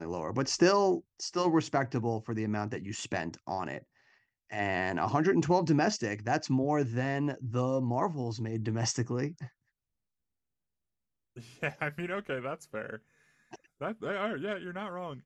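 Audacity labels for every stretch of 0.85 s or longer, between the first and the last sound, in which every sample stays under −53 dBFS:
9.490000	11.360000	silence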